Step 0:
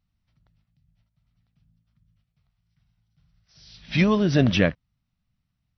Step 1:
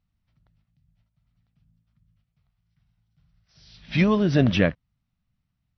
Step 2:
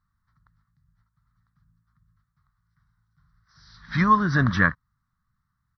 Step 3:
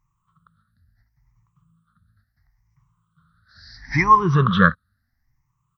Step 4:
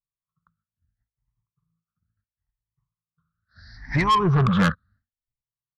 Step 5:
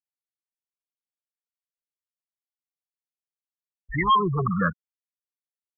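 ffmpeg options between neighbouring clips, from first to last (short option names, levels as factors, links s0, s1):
-af "lowpass=f=3900:p=1"
-af "firequalizer=gain_entry='entry(120,0);entry(390,-9);entry(630,-12);entry(1100,15);entry(1800,9);entry(2600,-19);entry(3900,-1)':delay=0.05:min_phase=1"
-af "afftfilt=real='re*pow(10,23/40*sin(2*PI*(0.71*log(max(b,1)*sr/1024/100)/log(2)-(0.73)*(pts-256)/sr)))':imag='im*pow(10,23/40*sin(2*PI*(0.71*log(max(b,1)*sr/1024/100)/log(2)-(0.73)*(pts-256)/sr)))':win_size=1024:overlap=0.75"
-af "agate=range=0.0224:threshold=0.00398:ratio=3:detection=peak,lowpass=f=1400:p=1,asoftclip=type=tanh:threshold=0.133,volume=1.41"
-filter_complex "[0:a]afftfilt=real='re*gte(hypot(re,im),0.178)':imag='im*gte(hypot(re,im),0.178)':win_size=1024:overlap=0.75,acrossover=split=310|510|2200[s0][s1][s2][s3];[s0]alimiter=limit=0.0631:level=0:latency=1:release=134[s4];[s1]aphaser=in_gain=1:out_gain=1:delay=1.1:decay=0.26:speed=1.3:type=triangular[s5];[s4][s5][s2][s3]amix=inputs=4:normalize=0"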